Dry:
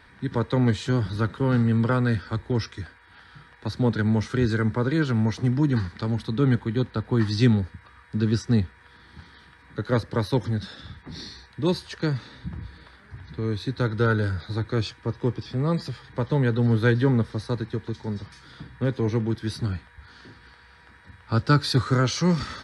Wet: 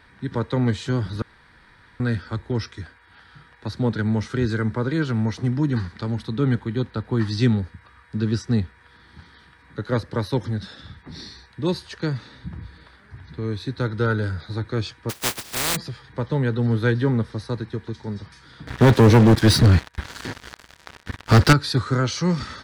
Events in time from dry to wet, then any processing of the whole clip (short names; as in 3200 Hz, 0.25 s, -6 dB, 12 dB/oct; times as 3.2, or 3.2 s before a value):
1.22–2 room tone
15.09–15.75 spectral contrast lowered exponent 0.15
18.67–21.53 sample leveller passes 5